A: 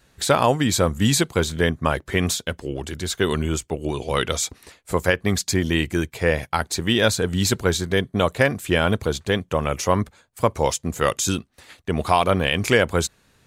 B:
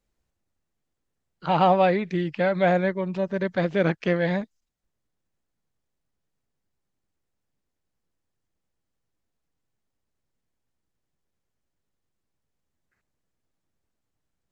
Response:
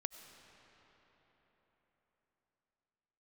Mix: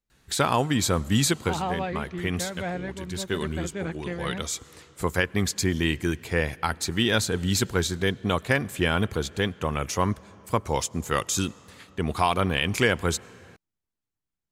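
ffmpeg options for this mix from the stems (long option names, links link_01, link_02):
-filter_complex "[0:a]adelay=100,volume=-5dB,asplit=2[link_01][link_02];[link_02]volume=-10.5dB[link_03];[1:a]volume=-8.5dB,asplit=2[link_04][link_05];[link_05]apad=whole_len=598164[link_06];[link_01][link_06]sidechaincompress=threshold=-33dB:ratio=8:attack=16:release=864[link_07];[2:a]atrim=start_sample=2205[link_08];[link_03][link_08]afir=irnorm=-1:irlink=0[link_09];[link_07][link_04][link_09]amix=inputs=3:normalize=0,equalizer=frequency=580:width_type=o:width=0.54:gain=-6"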